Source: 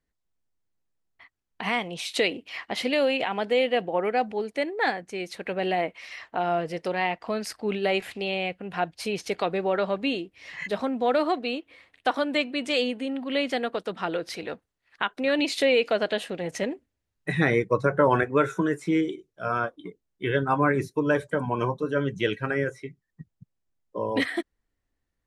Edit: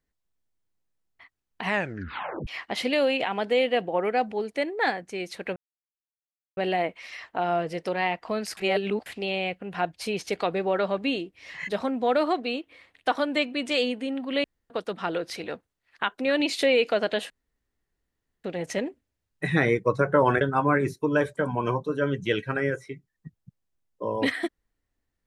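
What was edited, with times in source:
0:01.64: tape stop 0.83 s
0:05.56: splice in silence 1.01 s
0:07.56–0:08.05: reverse
0:13.43–0:13.69: fill with room tone
0:16.29: splice in room tone 1.14 s
0:18.26–0:20.35: remove

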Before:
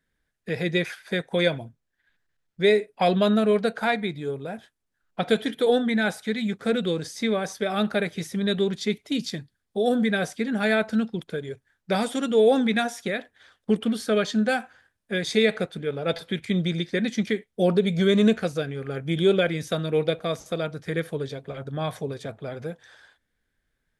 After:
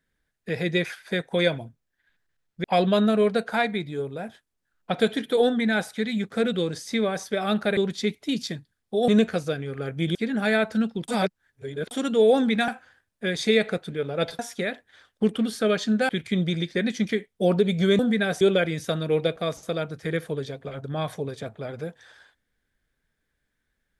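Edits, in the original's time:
0:02.64–0:02.93: remove
0:08.06–0:08.60: remove
0:09.91–0:10.33: swap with 0:18.17–0:19.24
0:11.26–0:12.09: reverse
0:12.86–0:14.56: move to 0:16.27

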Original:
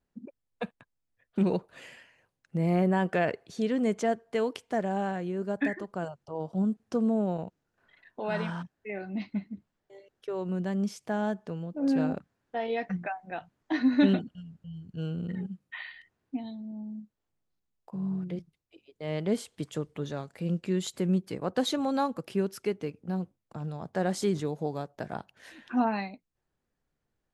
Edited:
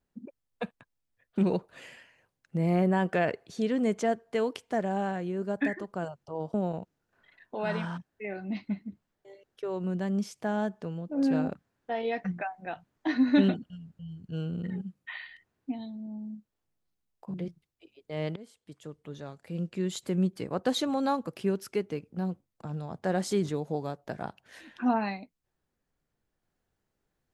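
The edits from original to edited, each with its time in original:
0:06.54–0:07.19: remove
0:17.99–0:18.25: remove
0:19.27–0:21.20: fade in, from −23 dB

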